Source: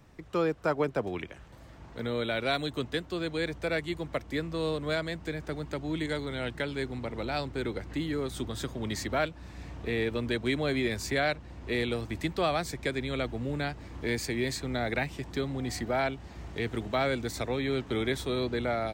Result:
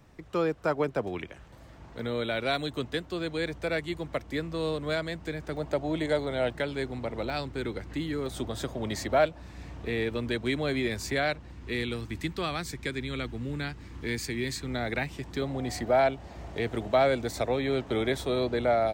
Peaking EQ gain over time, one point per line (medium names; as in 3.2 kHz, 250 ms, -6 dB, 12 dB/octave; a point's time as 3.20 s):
peaking EQ 640 Hz 0.86 oct
+1 dB
from 5.57 s +12 dB
from 6.52 s +5 dB
from 7.30 s -1.5 dB
from 8.26 s +8 dB
from 9.42 s 0 dB
from 11.51 s -9.5 dB
from 14.68 s -1.5 dB
from 15.42 s +8 dB